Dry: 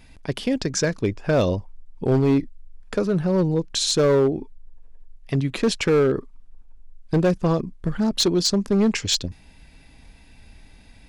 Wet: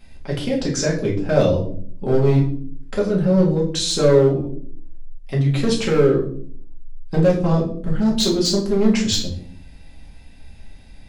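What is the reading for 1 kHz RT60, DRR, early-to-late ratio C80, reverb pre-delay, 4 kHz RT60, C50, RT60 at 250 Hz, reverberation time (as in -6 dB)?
0.45 s, -4.0 dB, 12.0 dB, 4 ms, 0.40 s, 8.0 dB, 0.85 s, 0.55 s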